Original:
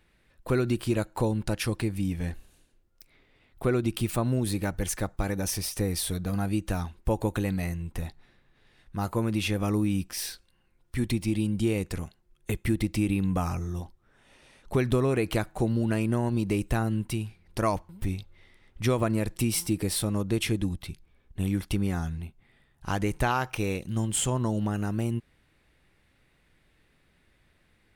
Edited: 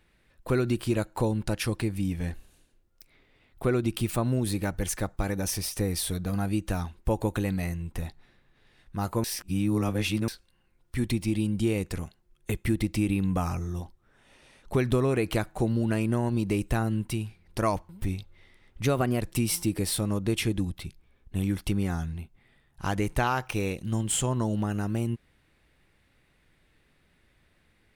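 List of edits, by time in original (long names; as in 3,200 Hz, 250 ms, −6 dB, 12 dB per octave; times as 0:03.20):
0:09.24–0:10.28: reverse
0:18.85–0:19.25: play speed 111%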